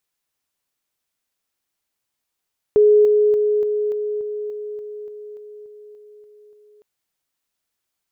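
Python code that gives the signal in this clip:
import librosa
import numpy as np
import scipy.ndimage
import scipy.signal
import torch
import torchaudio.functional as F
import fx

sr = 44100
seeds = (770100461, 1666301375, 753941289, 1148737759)

y = fx.level_ladder(sr, hz=420.0, from_db=-9.0, step_db=-3.0, steps=14, dwell_s=0.29, gap_s=0.0)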